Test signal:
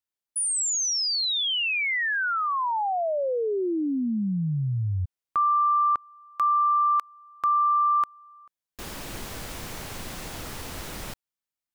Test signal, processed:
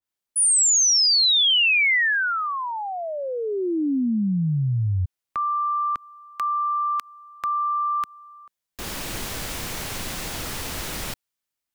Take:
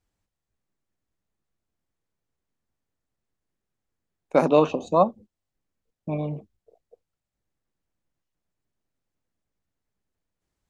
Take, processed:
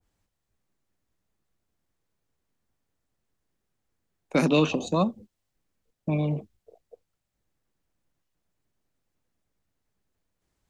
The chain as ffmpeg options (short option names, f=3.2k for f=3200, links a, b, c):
-filter_complex "[0:a]acrossover=split=350|1600[a][b][c];[b]acompressor=threshold=-35dB:ratio=6:attack=3.3:release=91:knee=1:detection=rms[d];[a][d][c]amix=inputs=3:normalize=0,adynamicequalizer=threshold=0.00631:dfrequency=1600:dqfactor=0.7:tfrequency=1600:tqfactor=0.7:attack=5:release=100:ratio=0.375:range=2:mode=boostabove:tftype=highshelf,volume=4dB"